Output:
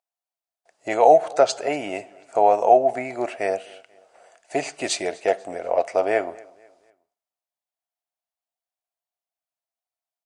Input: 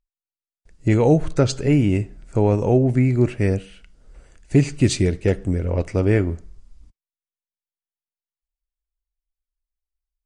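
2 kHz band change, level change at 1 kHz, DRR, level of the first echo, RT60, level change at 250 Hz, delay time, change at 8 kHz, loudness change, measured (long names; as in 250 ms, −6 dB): +1.0 dB, +12.5 dB, no reverb audible, −24.0 dB, no reverb audible, −13.5 dB, 244 ms, 0.0 dB, −1.5 dB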